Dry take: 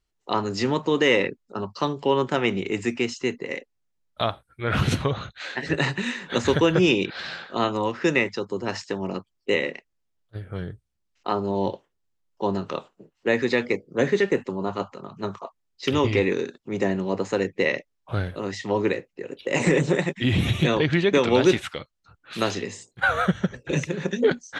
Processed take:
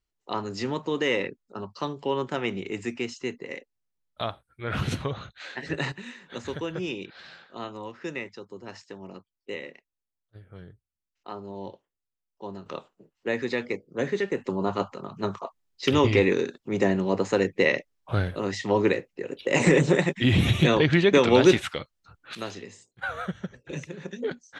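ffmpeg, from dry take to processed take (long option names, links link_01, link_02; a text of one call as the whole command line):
ffmpeg -i in.wav -af "asetnsamples=nb_out_samples=441:pad=0,asendcmd='5.92 volume volume -13dB;12.66 volume volume -6dB;14.44 volume volume 1dB;22.35 volume volume -10.5dB',volume=-6dB" out.wav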